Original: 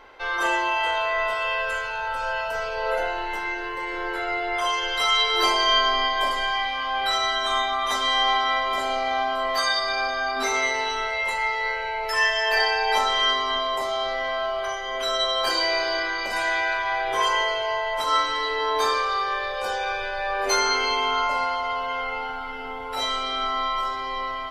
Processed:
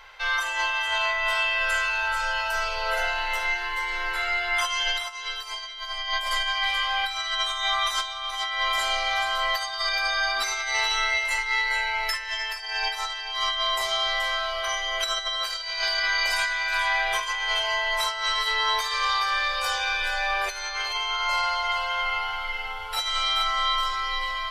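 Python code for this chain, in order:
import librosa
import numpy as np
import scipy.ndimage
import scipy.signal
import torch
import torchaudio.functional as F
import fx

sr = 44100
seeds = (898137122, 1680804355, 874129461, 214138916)

p1 = fx.tone_stack(x, sr, knobs='10-0-10')
p2 = fx.over_compress(p1, sr, threshold_db=-32.0, ratio=-0.5)
p3 = p2 + fx.echo_single(p2, sr, ms=428, db=-9.5, dry=0)
y = p3 * 10.0 ** (6.0 / 20.0)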